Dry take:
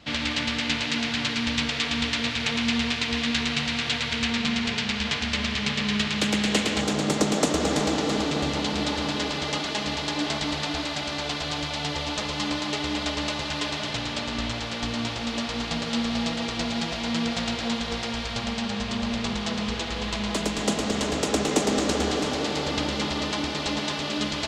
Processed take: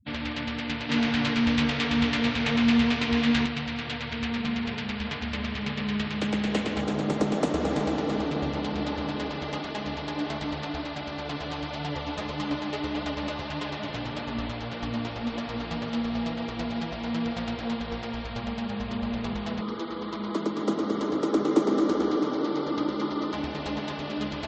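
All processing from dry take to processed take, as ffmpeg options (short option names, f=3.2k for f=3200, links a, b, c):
-filter_complex "[0:a]asettb=1/sr,asplit=3[a][b][c];[a]atrim=end=0.894[d];[b]atrim=start=0.89:end=3.46,asetpts=PTS-STARTPTS,afade=t=in:d=0.004:c=qsin,afade=t=out:st=2.566:d=0.004:c=qsin,asplit=2[e][f];[f]adelay=21,volume=-9.5dB[g];[e][g]amix=inputs=2:normalize=0,atrim=end_sample=113337,acontrast=34[h];[c]atrim=start=3.456[i];[d][h]acrossfade=d=0.004:c1=hsin:c2=qsin[j];[j][i]acrossfade=d=0.004:c1=qsin:c2=hsin,asettb=1/sr,asplit=3[k][l][m];[k]atrim=end=11.284[n];[l]atrim=start=11.28:end=15.9,asetpts=PTS-STARTPTS,afade=t=in:d=0.004:c=qsin,afade=t=out:st=4.616:d=0.004:c=qsin,acontrast=26,flanger=delay=5.4:depth=6.6:regen=53:speed=1.7:shape=triangular[o];[m]atrim=start=15.896[p];[n][o]acrossfade=d=0.004:c1=hsin:c2=qsin[q];[q][p]acrossfade=d=0.004:c1=qsin:c2=hsin,asettb=1/sr,asplit=3[r][s][t];[r]atrim=end=19.614[u];[s]atrim=start=19.61:end=23.34,asetpts=PTS-STARTPTS,afade=t=in:d=0.004:c=qsin,afade=t=out:st=3.726:d=0.004:c=qsin,highpass=190,equalizer=f=330:t=q:w=4:g=10,equalizer=f=710:t=q:w=4:g=-7,equalizer=f=1.2k:t=q:w=4:g=9,equalizer=f=1.7k:t=q:w=4:g=-5,equalizer=f=2.6k:t=q:w=4:g=-9,equalizer=f=7.6k:t=q:w=4:g=-5,lowpass=f=9.1k:w=0.5412,lowpass=f=9.1k:w=1.3066,bandreject=f=1.1k:w=16[v];[t]atrim=start=23.336[w];[u][v]acrossfade=d=0.004:c1=hsin:c2=qsin[x];[x][w]acrossfade=d=0.004:c1=qsin:c2=hsin,afftfilt=real='re*gte(hypot(re,im),0.0141)':imag='im*gte(hypot(re,im),0.0141)':win_size=1024:overlap=0.75,lowpass=f=1.4k:p=1,volume=-1.5dB"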